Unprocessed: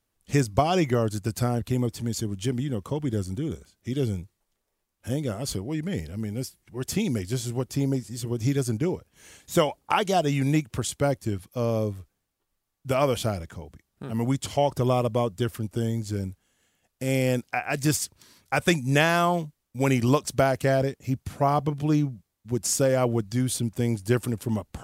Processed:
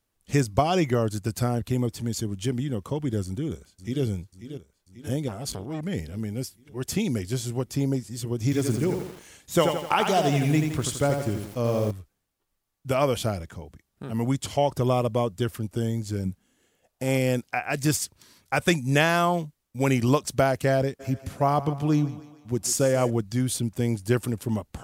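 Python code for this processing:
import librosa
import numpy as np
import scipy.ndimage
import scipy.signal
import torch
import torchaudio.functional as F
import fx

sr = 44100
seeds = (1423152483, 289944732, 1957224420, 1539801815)

y = fx.echo_throw(x, sr, start_s=3.24, length_s=0.79, ms=540, feedback_pct=60, wet_db=-11.5)
y = fx.transformer_sat(y, sr, knee_hz=600.0, at=(5.28, 5.81))
y = fx.echo_crushed(y, sr, ms=84, feedback_pct=55, bits=7, wet_db=-5.0, at=(8.43, 11.91))
y = fx.peak_eq(y, sr, hz=fx.line((16.24, 150.0), (17.17, 1100.0)), db=11.5, octaves=0.77, at=(16.24, 17.17), fade=0.02)
y = fx.echo_thinned(y, sr, ms=147, feedback_pct=54, hz=230.0, wet_db=-15.0, at=(20.99, 23.09), fade=0.02)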